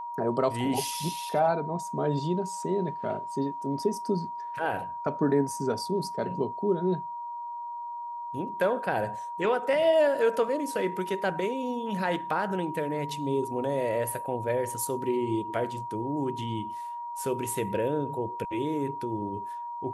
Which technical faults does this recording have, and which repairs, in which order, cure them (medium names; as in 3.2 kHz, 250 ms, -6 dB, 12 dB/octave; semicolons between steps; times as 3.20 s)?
whine 950 Hz -34 dBFS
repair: band-stop 950 Hz, Q 30